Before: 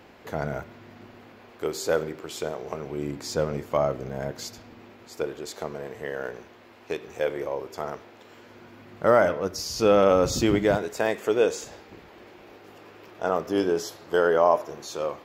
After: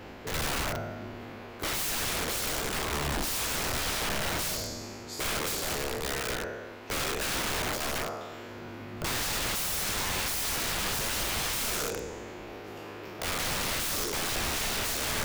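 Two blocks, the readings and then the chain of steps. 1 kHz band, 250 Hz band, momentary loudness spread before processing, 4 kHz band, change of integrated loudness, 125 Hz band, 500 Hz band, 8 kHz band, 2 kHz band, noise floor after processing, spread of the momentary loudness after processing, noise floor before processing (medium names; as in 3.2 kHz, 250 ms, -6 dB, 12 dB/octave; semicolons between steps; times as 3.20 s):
-5.0 dB, -8.5 dB, 16 LU, +7.0 dB, -4.0 dB, -2.5 dB, -13.5 dB, +8.0 dB, +2.0 dB, -43 dBFS, 13 LU, -51 dBFS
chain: spectral sustain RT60 1.43 s; in parallel at -11.5 dB: saturation -22 dBFS, distortion -7 dB; on the sum: peak limiter -13 dBFS, peak gain reduction 8.5 dB; integer overflow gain 26.5 dB; bass shelf 89 Hz +10.5 dB; reverse; upward compressor, threshold -39 dBFS; reverse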